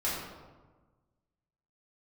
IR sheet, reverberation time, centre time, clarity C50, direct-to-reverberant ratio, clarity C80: 1.3 s, 75 ms, 0.5 dB, -8.5 dB, 3.0 dB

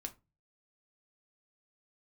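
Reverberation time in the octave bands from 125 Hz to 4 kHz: 0.55, 0.40, 0.25, 0.25, 0.20, 0.15 s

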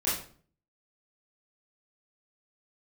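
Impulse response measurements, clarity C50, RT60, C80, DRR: 3.0 dB, 0.45 s, 8.5 dB, -10.0 dB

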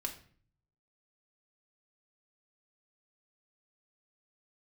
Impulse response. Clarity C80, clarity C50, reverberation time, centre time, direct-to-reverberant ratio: 15.0 dB, 10.5 dB, 0.50 s, 13 ms, 1.0 dB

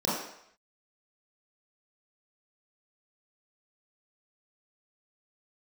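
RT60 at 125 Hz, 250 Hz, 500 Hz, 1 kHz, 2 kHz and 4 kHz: 0.55, 0.55, 0.70, 0.75, 0.75, 0.70 s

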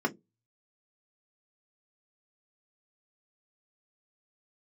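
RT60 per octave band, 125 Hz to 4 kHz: 0.45, 0.25, 0.25, 0.10, 0.10, 0.10 s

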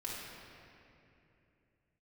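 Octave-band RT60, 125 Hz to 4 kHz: 3.9, 3.3, 3.1, 2.5, 2.7, 1.9 s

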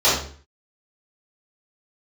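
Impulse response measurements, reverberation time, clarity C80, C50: 0.45 s, 7.0 dB, 2.0 dB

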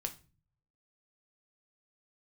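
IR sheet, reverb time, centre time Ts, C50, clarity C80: 0.35 s, 7 ms, 15.0 dB, 20.5 dB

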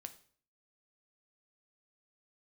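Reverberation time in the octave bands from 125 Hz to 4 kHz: 0.65, 0.55, 0.50, 0.50, 0.45, 0.45 s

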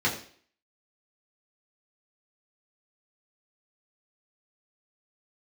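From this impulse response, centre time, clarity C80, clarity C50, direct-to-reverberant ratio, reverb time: 23 ms, 12.0 dB, 9.0 dB, -6.0 dB, 0.50 s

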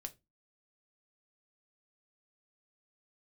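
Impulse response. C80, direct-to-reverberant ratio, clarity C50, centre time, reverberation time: 29.0 dB, 6.5 dB, 21.0 dB, 4 ms, 0.20 s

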